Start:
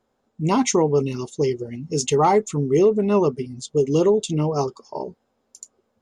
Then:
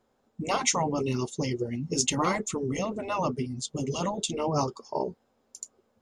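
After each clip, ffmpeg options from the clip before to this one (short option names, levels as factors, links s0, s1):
-af "afftfilt=real='re*lt(hypot(re,im),0.501)':imag='im*lt(hypot(re,im),0.501)':win_size=1024:overlap=0.75"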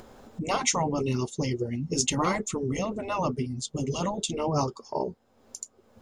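-af "lowshelf=f=75:g=9,acompressor=mode=upward:threshold=0.0224:ratio=2.5"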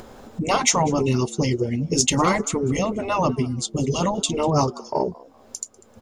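-filter_complex "[0:a]asplit=3[s0][s1][s2];[s1]adelay=195,afreqshift=95,volume=0.0708[s3];[s2]adelay=390,afreqshift=190,volume=0.0211[s4];[s0][s3][s4]amix=inputs=3:normalize=0,acontrast=78"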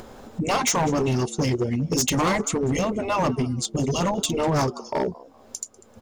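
-af "asoftclip=type=hard:threshold=0.126"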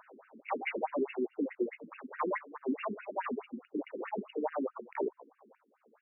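-af "afftfilt=real='re*between(b*sr/1024,280*pow(2100/280,0.5+0.5*sin(2*PI*4.7*pts/sr))/1.41,280*pow(2100/280,0.5+0.5*sin(2*PI*4.7*pts/sr))*1.41)':imag='im*between(b*sr/1024,280*pow(2100/280,0.5+0.5*sin(2*PI*4.7*pts/sr))/1.41,280*pow(2100/280,0.5+0.5*sin(2*PI*4.7*pts/sr))*1.41)':win_size=1024:overlap=0.75,volume=0.596"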